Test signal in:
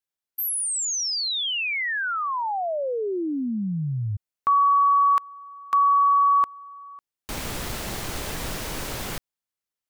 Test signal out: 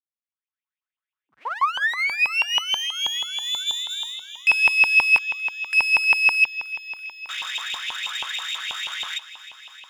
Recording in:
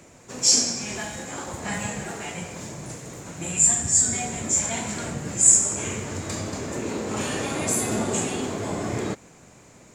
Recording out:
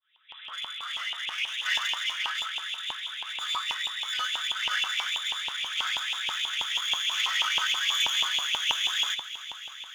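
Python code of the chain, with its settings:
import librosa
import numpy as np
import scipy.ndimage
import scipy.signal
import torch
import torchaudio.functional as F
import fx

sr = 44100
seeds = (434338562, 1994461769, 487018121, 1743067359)

y = fx.fade_in_head(x, sr, length_s=1.44)
y = fx.hum_notches(y, sr, base_hz=50, count=4)
y = y + 0.41 * np.pad(y, (int(5.0 * sr / 1000.0), 0))[:len(y)]
y = fx.freq_invert(y, sr, carrier_hz=3700)
y = fx.clip_asym(y, sr, top_db=-38.0, bottom_db=-17.5)
y = fx.echo_thinned(y, sr, ms=309, feedback_pct=79, hz=230.0, wet_db=-16)
y = fx.filter_lfo_highpass(y, sr, shape='saw_up', hz=6.2, low_hz=910.0, high_hz=2900.0, q=5.7)
y = y * 10.0 ** (-1.5 / 20.0)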